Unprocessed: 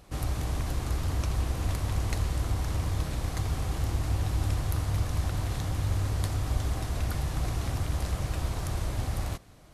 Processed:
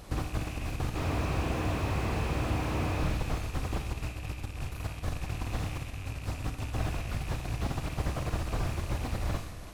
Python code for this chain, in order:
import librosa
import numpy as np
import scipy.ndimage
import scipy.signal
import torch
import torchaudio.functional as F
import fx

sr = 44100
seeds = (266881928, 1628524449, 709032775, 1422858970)

y = fx.rattle_buzz(x, sr, strikes_db=-27.0, level_db=-23.0)
y = fx.highpass(y, sr, hz=210.0, slope=6, at=(0.94, 3.03))
y = fx.over_compress(y, sr, threshold_db=-33.0, ratio=-0.5)
y = y + 10.0 ** (-16.5 / 20.0) * np.pad(y, (int(337 * sr / 1000.0), 0))[:len(y)]
y = fx.rev_schroeder(y, sr, rt60_s=0.87, comb_ms=26, drr_db=7.0)
y = fx.slew_limit(y, sr, full_power_hz=22.0)
y = F.gain(torch.from_numpy(y), 2.0).numpy()